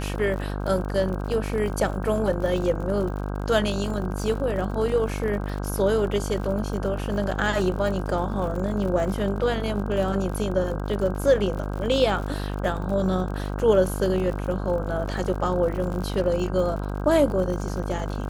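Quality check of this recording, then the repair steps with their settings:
buzz 50 Hz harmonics 32 -29 dBFS
crackle 58 per s -32 dBFS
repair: de-click; de-hum 50 Hz, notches 32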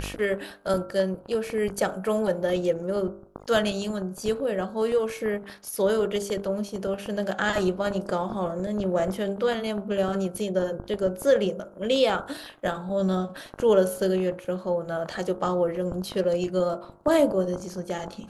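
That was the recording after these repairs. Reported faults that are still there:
nothing left

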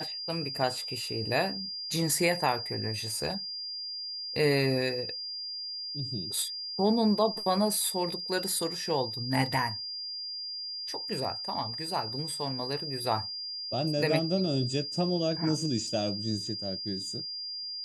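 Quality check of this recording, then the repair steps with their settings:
whine 4.8 kHz -35 dBFS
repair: band-stop 4.8 kHz, Q 30

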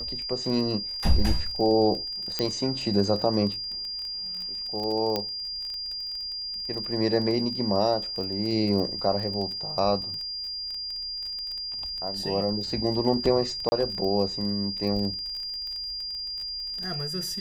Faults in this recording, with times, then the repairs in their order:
crackle 21 per s -32 dBFS
whine 4.8 kHz -31 dBFS
2.39 s: pop -11 dBFS
5.16 s: pop -12 dBFS
13.69–13.72 s: dropout 30 ms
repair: de-click; band-stop 4.8 kHz, Q 30; interpolate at 13.69 s, 30 ms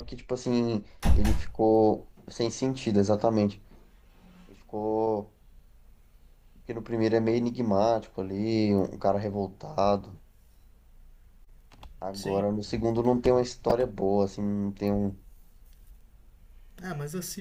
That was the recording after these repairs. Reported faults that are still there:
nothing left

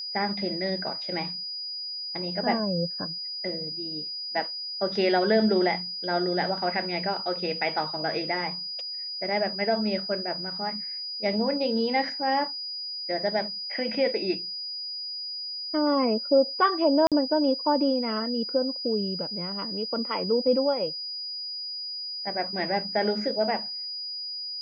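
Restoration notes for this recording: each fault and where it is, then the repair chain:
whine 4.9 kHz -32 dBFS
17.07–17.12 s: dropout 47 ms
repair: band-stop 4.9 kHz, Q 30; interpolate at 17.07 s, 47 ms

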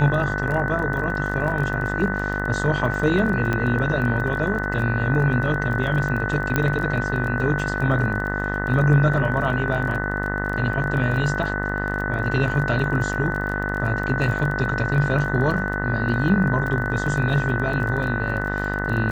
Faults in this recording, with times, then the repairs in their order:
buzz 50 Hz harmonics 40 -27 dBFS
crackle 24 per s -28 dBFS
whine 1.5 kHz -27 dBFS
3.53 s: pop -11 dBFS
6.56 s: pop -7 dBFS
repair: de-click; band-stop 1.5 kHz, Q 30; de-hum 50 Hz, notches 40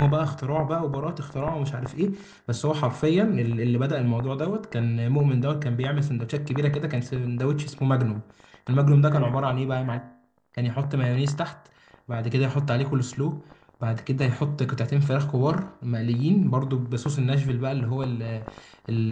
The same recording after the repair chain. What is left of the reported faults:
3.53 s: pop

